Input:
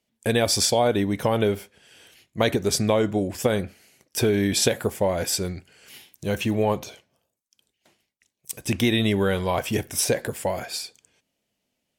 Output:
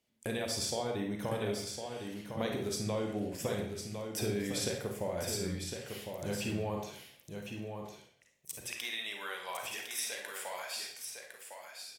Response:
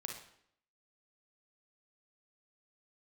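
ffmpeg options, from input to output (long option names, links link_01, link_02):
-filter_complex "[0:a]asettb=1/sr,asplit=3[link_01][link_02][link_03];[link_01]atrim=end=8.664[link_04];[link_02]atrim=start=8.66:end=10.75,asetpts=PTS-STARTPTS,afade=type=in:duration=0.004:curve=qsin,afade=type=out:start_time=2.086:duration=0.004:curve=qsin,highpass=1100[link_05];[link_03]atrim=start=10.746[link_06];[link_04][link_05]acrossfade=duration=0.004:curve1=hsin:curve2=qsin[link_07];[link_07][link_06]acrossfade=duration=0.004:curve1=qsin:curve2=hsin,acompressor=threshold=-40dB:ratio=2,aecho=1:1:1056:0.473[link_08];[1:a]atrim=start_sample=2205,afade=type=out:start_time=0.34:duration=0.01,atrim=end_sample=15435[link_09];[link_08][link_09]afir=irnorm=-1:irlink=0"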